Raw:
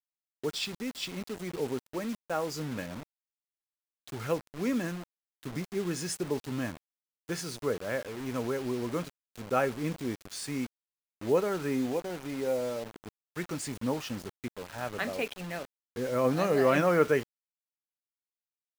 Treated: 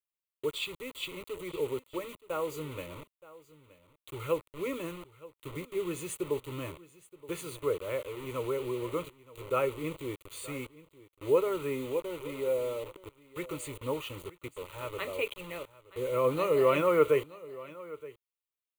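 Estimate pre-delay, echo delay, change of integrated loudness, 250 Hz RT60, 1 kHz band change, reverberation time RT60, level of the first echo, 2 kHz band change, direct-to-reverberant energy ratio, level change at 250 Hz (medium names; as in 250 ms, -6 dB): no reverb, 923 ms, -1.0 dB, no reverb, -1.5 dB, no reverb, -19.0 dB, -3.5 dB, no reverb, -6.0 dB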